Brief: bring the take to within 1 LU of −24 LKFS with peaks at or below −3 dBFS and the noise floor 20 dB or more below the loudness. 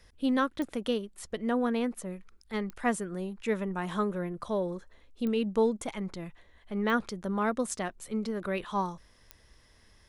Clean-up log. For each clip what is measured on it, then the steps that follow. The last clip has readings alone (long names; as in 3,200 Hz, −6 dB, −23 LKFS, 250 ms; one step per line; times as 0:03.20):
number of clicks 5; integrated loudness −32.0 LKFS; sample peak −15.5 dBFS; target loudness −24.0 LKFS
→ click removal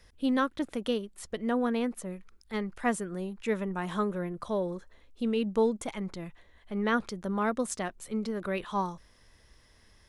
number of clicks 0; integrated loudness −32.0 LKFS; sample peak −15.5 dBFS; target loudness −24.0 LKFS
→ level +8 dB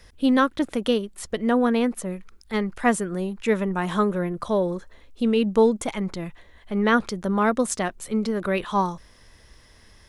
integrated loudness −24.0 LKFS; sample peak −7.5 dBFS; background noise floor −53 dBFS